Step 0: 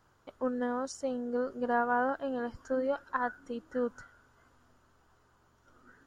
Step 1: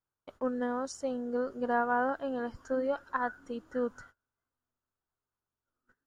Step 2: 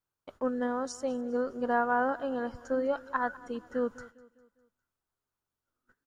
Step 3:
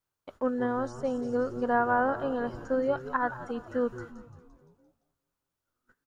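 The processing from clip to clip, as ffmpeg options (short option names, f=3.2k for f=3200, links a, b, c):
-af "agate=range=-27dB:threshold=-54dB:ratio=16:detection=peak"
-af "aecho=1:1:202|404|606|808:0.0944|0.0453|0.0218|0.0104,volume=1.5dB"
-filter_complex "[0:a]asplit=7[a][b][c][d][e][f][g];[b]adelay=172,afreqshift=-130,volume=-15dB[h];[c]adelay=344,afreqshift=-260,volume=-19.6dB[i];[d]adelay=516,afreqshift=-390,volume=-24.2dB[j];[e]adelay=688,afreqshift=-520,volume=-28.7dB[k];[f]adelay=860,afreqshift=-650,volume=-33.3dB[l];[g]adelay=1032,afreqshift=-780,volume=-37.9dB[m];[a][h][i][j][k][l][m]amix=inputs=7:normalize=0,acrossover=split=2700[n][o];[o]acompressor=threshold=-57dB:ratio=4:attack=1:release=60[p];[n][p]amix=inputs=2:normalize=0,volume=2dB"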